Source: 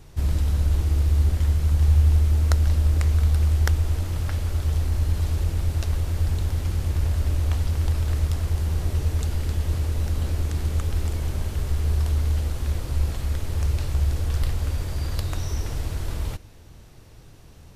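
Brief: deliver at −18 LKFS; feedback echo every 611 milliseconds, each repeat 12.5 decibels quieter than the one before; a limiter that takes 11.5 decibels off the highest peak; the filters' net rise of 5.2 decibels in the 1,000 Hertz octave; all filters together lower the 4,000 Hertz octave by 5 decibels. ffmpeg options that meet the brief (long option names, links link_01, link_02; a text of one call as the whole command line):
ffmpeg -i in.wav -af "equalizer=frequency=1000:width_type=o:gain=7,equalizer=frequency=4000:width_type=o:gain=-7,alimiter=limit=-15.5dB:level=0:latency=1,aecho=1:1:611|1222|1833:0.237|0.0569|0.0137,volume=8dB" out.wav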